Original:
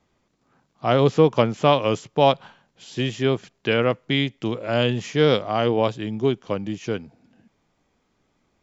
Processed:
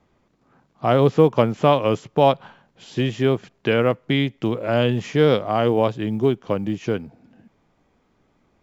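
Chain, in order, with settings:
high-shelf EQ 3,100 Hz −10 dB
in parallel at −1 dB: downward compressor 8 to 1, threshold −26 dBFS, peak gain reduction 15.5 dB
on the sum: floating-point word with a short mantissa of 6 bits

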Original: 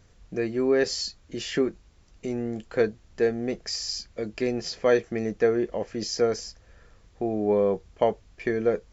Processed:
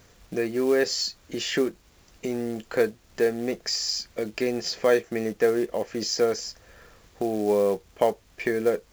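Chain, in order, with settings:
in parallel at +2.5 dB: downward compressor 10 to 1, threshold −36 dBFS, peak gain reduction 20.5 dB
on the sum: log-companded quantiser 6 bits
low-shelf EQ 140 Hz −11.5 dB

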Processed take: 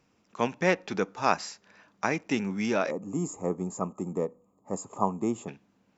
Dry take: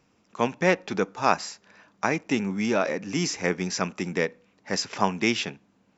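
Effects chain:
gain on a spectral selection 0:02.91–0:05.49, 1,300–6,500 Hz −24 dB
level −3 dB

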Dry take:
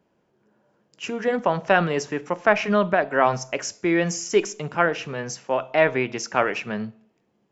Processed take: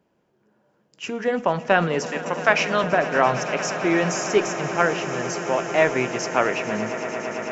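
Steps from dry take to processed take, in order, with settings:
0:02.06–0:02.84: spectral tilt +3.5 dB per octave
on a send: echo that builds up and dies away 112 ms, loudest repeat 8, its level −17 dB

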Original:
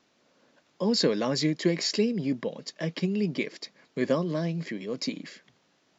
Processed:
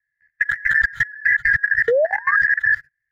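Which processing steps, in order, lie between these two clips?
band-splitting scrambler in four parts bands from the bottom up 3142
leveller curve on the samples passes 5
low-shelf EQ 430 Hz +6 dB
time stretch by phase vocoder 0.52×
drawn EQ curve 140 Hz 0 dB, 220 Hz −28 dB, 1,100 Hz −23 dB, 1,700 Hz +14 dB, 2,800 Hz −23 dB
sound drawn into the spectrogram rise, 0:01.88–0:02.36, 450–1,300 Hz −17 dBFS
compressor whose output falls as the input rises −19 dBFS, ratio −1
brickwall limiter −12 dBFS, peak gain reduction 7.5 dB
output level in coarse steps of 21 dB
level +5.5 dB

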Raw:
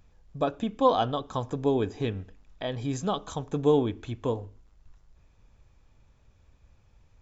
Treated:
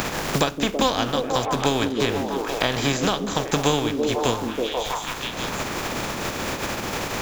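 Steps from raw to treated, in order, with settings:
compressing power law on the bin magnitudes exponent 0.45
0:01.45–0:02.09: slack as between gear wheels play −36.5 dBFS
echo through a band-pass that steps 162 ms, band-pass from 250 Hz, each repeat 0.7 octaves, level −2 dB
multiband upward and downward compressor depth 100%
level +5 dB

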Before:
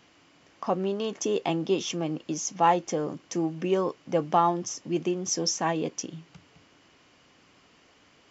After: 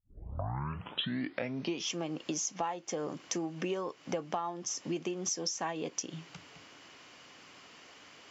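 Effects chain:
turntable start at the beginning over 1.92 s
high-pass filter 75 Hz
low-shelf EQ 460 Hz −8 dB
downward compressor 12 to 1, threshold −38 dBFS, peak gain reduction 20.5 dB
level +6.5 dB

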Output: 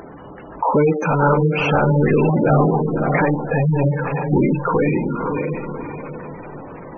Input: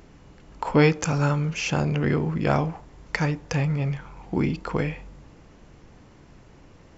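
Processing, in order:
mid-hump overdrive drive 29 dB, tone 1,200 Hz, clips at −6 dBFS
feedback delay with all-pass diffusion 565 ms, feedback 41%, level −3.5 dB
gate on every frequency bin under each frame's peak −15 dB strong

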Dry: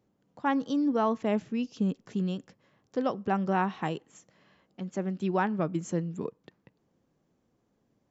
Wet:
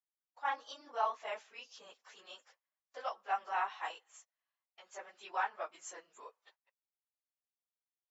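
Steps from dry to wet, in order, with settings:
random phases in long frames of 50 ms
noise gate −55 dBFS, range −25 dB
high-pass filter 750 Hz 24 dB per octave
level −3.5 dB

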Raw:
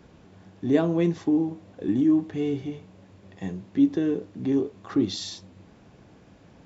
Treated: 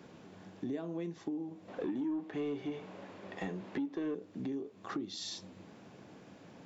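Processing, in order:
high-pass filter 160 Hz 12 dB per octave
downward compressor 6 to 1, threshold −37 dBFS, peak gain reduction 20 dB
0:01.68–0:04.15: mid-hump overdrive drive 17 dB, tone 1,700 Hz, clips at −26 dBFS

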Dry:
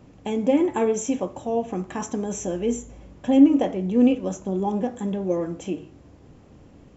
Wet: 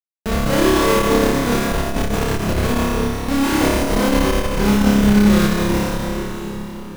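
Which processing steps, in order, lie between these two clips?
pitch shifter swept by a sawtooth +1 semitone, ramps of 374 ms
high-pass filter 63 Hz 24 dB per octave
in parallel at 0 dB: brickwall limiter −17 dBFS, peak gain reduction 12 dB
on the sum: comparator with hysteresis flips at −19 dBFS
on a send: flutter between parallel walls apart 5 metres, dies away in 1.3 s
on the sum: dense smooth reverb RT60 4.5 s, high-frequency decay 0.85×, DRR 0 dB
saturating transformer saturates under 85 Hz
level −1 dB

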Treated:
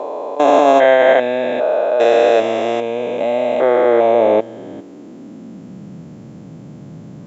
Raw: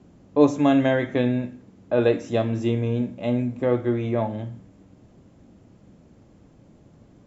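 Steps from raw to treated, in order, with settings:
spectrum averaged block by block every 400 ms
high-pass filter sweep 670 Hz → 150 Hz, 0:03.82–0:06.00
boost into a limiter +16 dB
level −1 dB

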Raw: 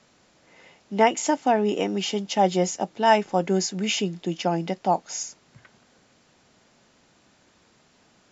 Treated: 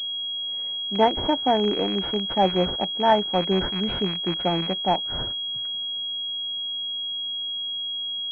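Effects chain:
loose part that buzzes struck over −35 dBFS, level −16 dBFS
switching amplifier with a slow clock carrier 3,300 Hz

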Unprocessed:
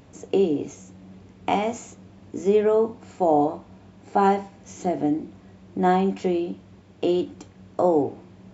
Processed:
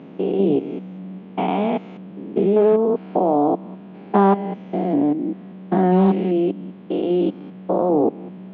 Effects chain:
spectrum averaged block by block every 200 ms
low-shelf EQ 440 Hz +8.5 dB
in parallel at +0.5 dB: downward compressor, threshold −25 dBFS, peak gain reduction 12.5 dB
on the sum: elliptic band-pass filter 180–3,200 Hz, stop band 40 dB
highs frequency-modulated by the lows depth 0.17 ms

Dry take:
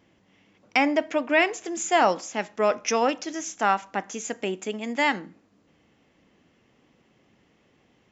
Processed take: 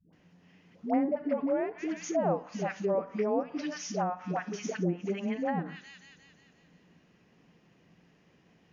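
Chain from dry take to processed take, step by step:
speed change −7%
parametric band 170 Hz +10.5 dB 0.29 octaves
mains-hum notches 50/100/150/200/250 Hz
in parallel at 0 dB: brickwall limiter −17.5 dBFS, peak gain reduction 10.5 dB
on the sum: all-pass dispersion highs, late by 131 ms, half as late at 470 Hz
on a send: delay with a high-pass on its return 177 ms, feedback 57%, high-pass 3,200 Hz, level −8.5 dB
on the sum: treble cut that deepens with the level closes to 620 Hz, closed at −15.5 dBFS
level −8 dB

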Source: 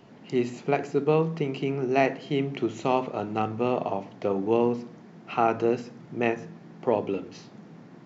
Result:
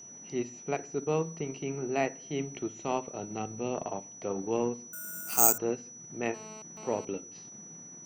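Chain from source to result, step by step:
0:03.09–0:03.75: dynamic equaliser 1,200 Hz, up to −7 dB, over −42 dBFS, Q 1.2
transient designer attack −3 dB, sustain −7 dB
steady tone 5,900 Hz −40 dBFS
0:04.93–0:05.58: bad sample-rate conversion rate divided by 6×, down none, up zero stuff
0:06.34–0:07.05: phone interference −42 dBFS
level −6 dB

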